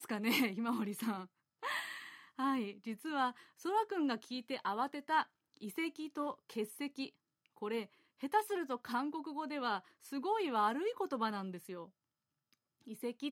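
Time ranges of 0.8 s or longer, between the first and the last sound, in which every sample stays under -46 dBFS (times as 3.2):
11.86–12.87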